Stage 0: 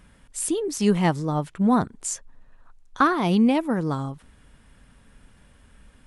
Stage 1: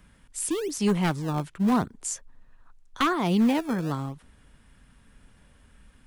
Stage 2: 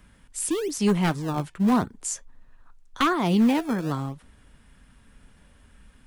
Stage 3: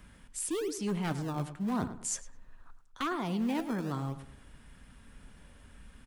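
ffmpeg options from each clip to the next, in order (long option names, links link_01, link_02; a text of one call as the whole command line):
ffmpeg -i in.wav -filter_complex "[0:a]acrossover=split=380|550|3500[link_01][link_02][link_03][link_04];[link_02]acrusher=samples=26:mix=1:aa=0.000001:lfo=1:lforange=41.6:lforate=0.87[link_05];[link_01][link_05][link_03][link_04]amix=inputs=4:normalize=0,aeval=exprs='0.224*(abs(mod(val(0)/0.224+3,4)-2)-1)':channel_layout=same,volume=-2.5dB" out.wav
ffmpeg -i in.wav -af "flanger=delay=2.9:depth=2:regen=-81:speed=1.6:shape=sinusoidal,volume=6dB" out.wav
ffmpeg -i in.wav -filter_complex "[0:a]areverse,acompressor=threshold=-32dB:ratio=4,areverse,asplit=2[link_01][link_02];[link_02]adelay=105,lowpass=frequency=2400:poles=1,volume=-11.5dB,asplit=2[link_03][link_04];[link_04]adelay=105,lowpass=frequency=2400:poles=1,volume=0.33,asplit=2[link_05][link_06];[link_06]adelay=105,lowpass=frequency=2400:poles=1,volume=0.33[link_07];[link_01][link_03][link_05][link_07]amix=inputs=4:normalize=0" out.wav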